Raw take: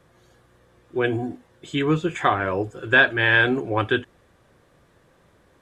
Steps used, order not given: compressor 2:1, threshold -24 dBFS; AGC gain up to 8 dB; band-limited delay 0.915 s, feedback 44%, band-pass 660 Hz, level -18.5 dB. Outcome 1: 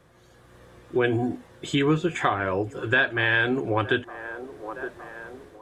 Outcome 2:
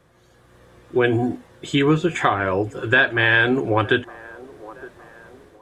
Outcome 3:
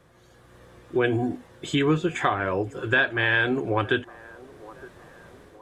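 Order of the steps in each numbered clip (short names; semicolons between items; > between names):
band-limited delay > AGC > compressor; compressor > band-limited delay > AGC; AGC > compressor > band-limited delay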